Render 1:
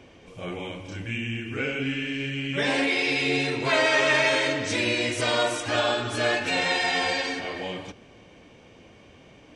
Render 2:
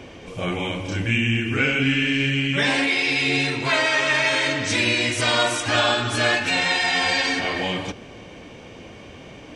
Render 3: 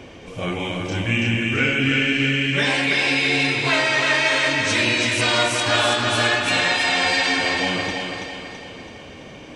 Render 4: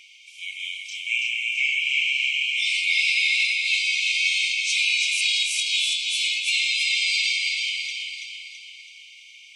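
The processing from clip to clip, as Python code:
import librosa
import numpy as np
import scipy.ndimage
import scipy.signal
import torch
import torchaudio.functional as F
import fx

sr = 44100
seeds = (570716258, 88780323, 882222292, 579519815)

y1 = fx.dynamic_eq(x, sr, hz=470.0, q=1.2, threshold_db=-39.0, ratio=4.0, max_db=-7)
y1 = fx.rider(y1, sr, range_db=4, speed_s=0.5)
y1 = y1 * librosa.db_to_amplitude(6.0)
y2 = fx.echo_thinned(y1, sr, ms=331, feedback_pct=50, hz=160.0, wet_db=-4)
y3 = fx.brickwall_highpass(y2, sr, low_hz=2100.0)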